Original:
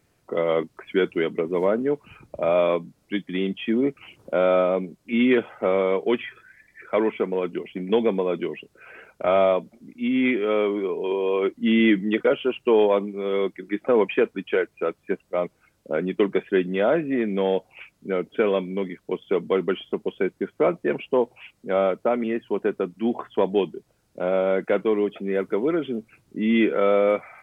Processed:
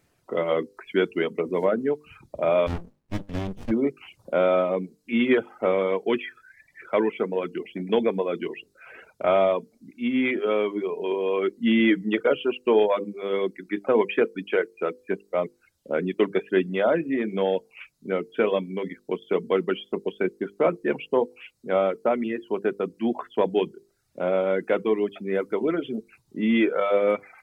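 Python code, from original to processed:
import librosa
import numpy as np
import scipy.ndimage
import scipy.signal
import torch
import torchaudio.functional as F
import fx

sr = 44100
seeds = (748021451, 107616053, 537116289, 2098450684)

y = fx.hum_notches(x, sr, base_hz=50, count=10)
y = fx.dereverb_blind(y, sr, rt60_s=0.57)
y = fx.running_max(y, sr, window=65, at=(2.66, 3.7), fade=0.02)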